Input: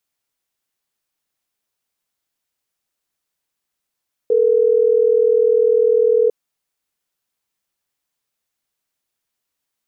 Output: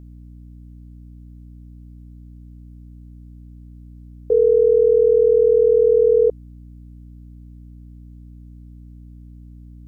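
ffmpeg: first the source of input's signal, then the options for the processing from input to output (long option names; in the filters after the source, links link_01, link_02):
-f lavfi -i "aevalsrc='0.2*(sin(2*PI*440*t)+sin(2*PI*480*t))*clip(min(mod(t,6),2-mod(t,6))/0.005,0,1)':duration=3.12:sample_rate=44100"
-af "aeval=exprs='val(0)+0.0112*(sin(2*PI*60*n/s)+sin(2*PI*2*60*n/s)/2+sin(2*PI*3*60*n/s)/3+sin(2*PI*4*60*n/s)/4+sin(2*PI*5*60*n/s)/5)':channel_layout=same"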